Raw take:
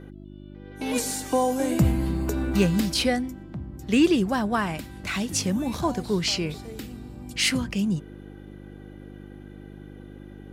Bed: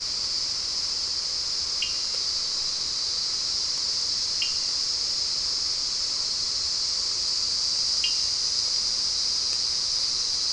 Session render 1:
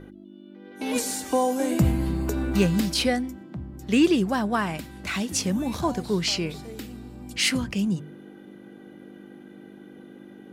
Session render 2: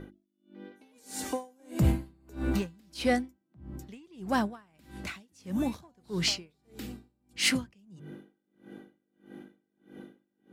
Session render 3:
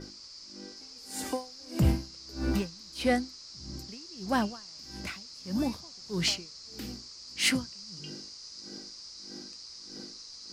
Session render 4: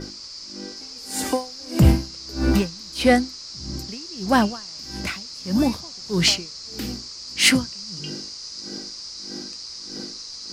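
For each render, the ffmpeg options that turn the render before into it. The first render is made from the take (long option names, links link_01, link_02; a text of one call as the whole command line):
ffmpeg -i in.wav -af "bandreject=frequency=50:width_type=h:width=4,bandreject=frequency=100:width_type=h:width=4,bandreject=frequency=150:width_type=h:width=4" out.wav
ffmpeg -i in.wav -af "asoftclip=type=tanh:threshold=-13dB,aeval=exprs='val(0)*pow(10,-36*(0.5-0.5*cos(2*PI*1.6*n/s))/20)':channel_layout=same" out.wav
ffmpeg -i in.wav -i bed.wav -filter_complex "[1:a]volume=-20.5dB[link_01];[0:a][link_01]amix=inputs=2:normalize=0" out.wav
ffmpeg -i in.wav -af "volume=10dB" out.wav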